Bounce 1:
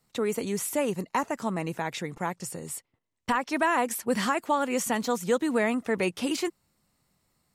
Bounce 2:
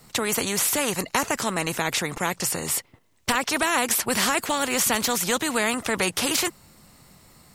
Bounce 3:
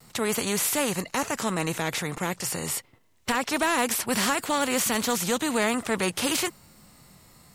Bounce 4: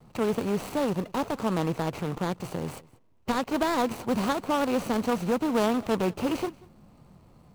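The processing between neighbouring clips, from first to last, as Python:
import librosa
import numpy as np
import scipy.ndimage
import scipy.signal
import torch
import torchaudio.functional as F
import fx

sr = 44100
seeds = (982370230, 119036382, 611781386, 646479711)

y1 = fx.spectral_comp(x, sr, ratio=2.0)
y1 = y1 * librosa.db_to_amplitude(6.5)
y2 = fx.hpss(y1, sr, part='harmonic', gain_db=8)
y2 = np.clip(10.0 ** (9.5 / 20.0) * y2, -1.0, 1.0) / 10.0 ** (9.5 / 20.0)
y2 = fx.vibrato(y2, sr, rate_hz=0.5, depth_cents=19.0)
y2 = y2 * librosa.db_to_amplitude(-6.5)
y3 = scipy.signal.medfilt(y2, 25)
y3 = y3 + 10.0 ** (-23.5 / 20.0) * np.pad(y3, (int(186 * sr / 1000.0), 0))[:len(y3)]
y3 = y3 * librosa.db_to_amplitude(2.0)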